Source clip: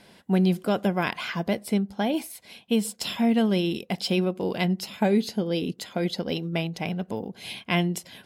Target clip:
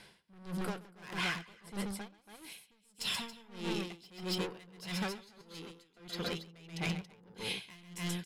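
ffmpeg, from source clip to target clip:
-filter_complex "[0:a]highshelf=f=9900:g=-10,asoftclip=type=tanh:threshold=0.0422,asplit=3[s0][s1][s2];[s0]afade=t=out:st=2.07:d=0.02[s3];[s1]acompressor=threshold=0.00251:ratio=2,afade=t=in:st=2.07:d=0.02,afade=t=out:st=2.95:d=0.02[s4];[s2]afade=t=in:st=2.95:d=0.02[s5];[s3][s4][s5]amix=inputs=3:normalize=0,aecho=1:1:131.2|279.9:0.501|0.708,asettb=1/sr,asplit=3[s6][s7][s8];[s6]atrim=end=5.414[s9];[s7]atrim=start=5.41:end=5.97,asetpts=PTS-STARTPTS,afade=t=in:d=0.004:c=qsin,afade=t=out:st=0.556:d=0.004:c=qsin,acrossover=split=460|4200[s10][s11][s12];[s10]acompressor=threshold=0.00562:ratio=4[s13];[s11]acompressor=threshold=0.00398:ratio=4[s14];[s12]acompressor=threshold=0.002:ratio=4[s15];[s13][s14][s15]amix=inputs=3:normalize=0[s16];[s8]atrim=start=5.966[s17];[s9][s16]acrossfade=d=0.004:c1=hsin:c2=qsin[s18];[s18][s17]acrossfade=d=0.004:c1=qsin:c2=hsin,equalizer=f=100:t=o:w=0.67:g=-5,equalizer=f=250:t=o:w=0.67:g=-12,equalizer=f=630:t=o:w=0.67:g=-9,equalizer=f=10000:t=o:w=0.67:g=4,aeval=exprs='val(0)*pow(10,-25*(0.5-0.5*cos(2*PI*1.6*n/s))/20)':c=same,volume=1.12"

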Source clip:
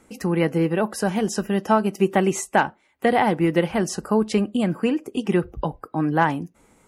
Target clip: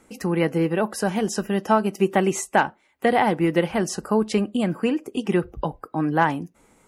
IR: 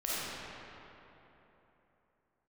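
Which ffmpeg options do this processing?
-af "equalizer=f=77:w=0.41:g=-2.5"

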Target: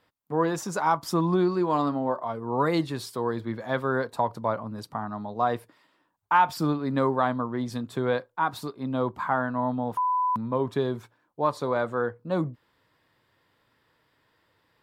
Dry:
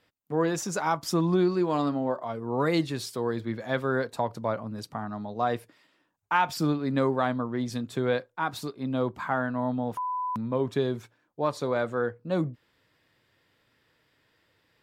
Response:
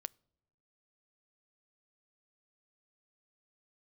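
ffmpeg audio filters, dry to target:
-af "equalizer=f=1000:t=o:w=0.67:g=6,equalizer=f=2500:t=o:w=0.67:g=-3,equalizer=f=6300:t=o:w=0.67:g=-4"

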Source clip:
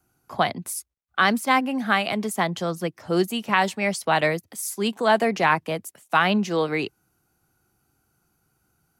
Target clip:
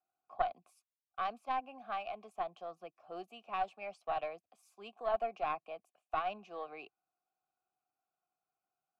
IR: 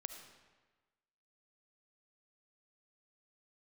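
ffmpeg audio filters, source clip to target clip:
-filter_complex "[0:a]asplit=3[s0][s1][s2];[s0]bandpass=f=730:t=q:w=8,volume=1[s3];[s1]bandpass=f=1090:t=q:w=8,volume=0.501[s4];[s2]bandpass=f=2440:t=q:w=8,volume=0.355[s5];[s3][s4][s5]amix=inputs=3:normalize=0,aeval=exprs='0.224*(cos(1*acos(clip(val(0)/0.224,-1,1)))-cos(1*PI/2))+0.0447*(cos(2*acos(clip(val(0)/0.224,-1,1)))-cos(2*PI/2))+0.0112*(cos(3*acos(clip(val(0)/0.224,-1,1)))-cos(3*PI/2))':c=same,volume=0.473"

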